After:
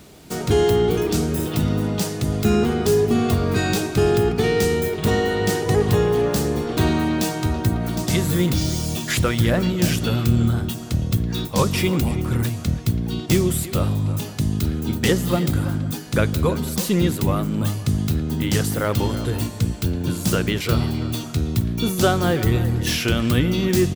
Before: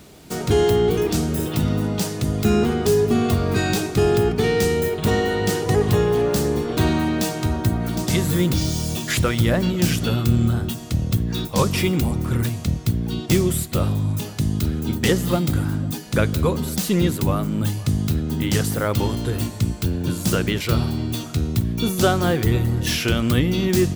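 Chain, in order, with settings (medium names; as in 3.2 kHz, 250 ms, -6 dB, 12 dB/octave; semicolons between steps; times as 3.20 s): speakerphone echo 330 ms, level -13 dB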